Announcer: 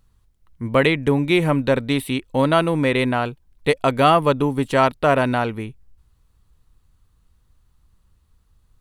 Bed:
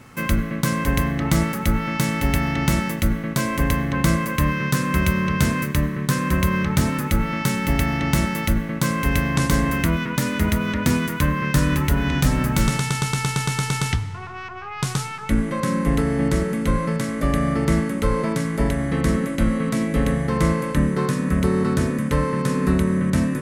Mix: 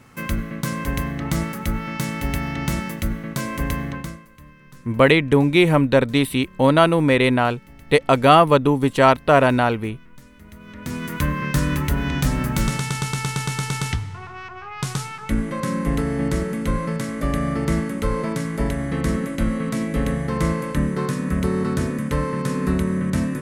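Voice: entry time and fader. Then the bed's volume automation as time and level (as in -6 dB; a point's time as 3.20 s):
4.25 s, +2.5 dB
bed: 3.89 s -4 dB
4.29 s -26 dB
10.43 s -26 dB
11.15 s -2 dB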